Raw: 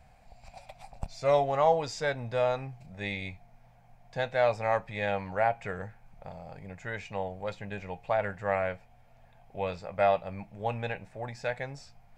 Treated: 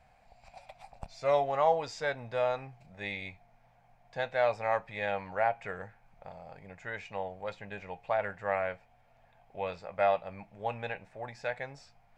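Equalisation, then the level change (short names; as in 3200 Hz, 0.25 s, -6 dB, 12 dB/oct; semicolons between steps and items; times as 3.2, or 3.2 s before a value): low shelf 350 Hz -9 dB; high shelf 5000 Hz -9 dB; 0.0 dB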